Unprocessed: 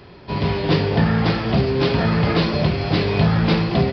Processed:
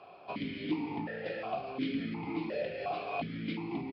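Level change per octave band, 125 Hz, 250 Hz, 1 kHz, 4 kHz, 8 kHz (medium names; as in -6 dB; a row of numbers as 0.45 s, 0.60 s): -27.0 dB, -16.0 dB, -13.5 dB, -20.0 dB, no reading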